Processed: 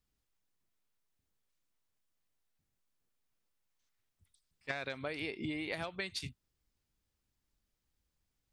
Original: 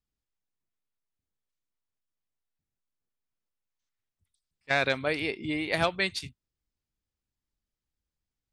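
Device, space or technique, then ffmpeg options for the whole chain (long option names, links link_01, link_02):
serial compression, peaks first: -af "acompressor=threshold=-34dB:ratio=6,acompressor=threshold=-43dB:ratio=2.5,volume=5dB"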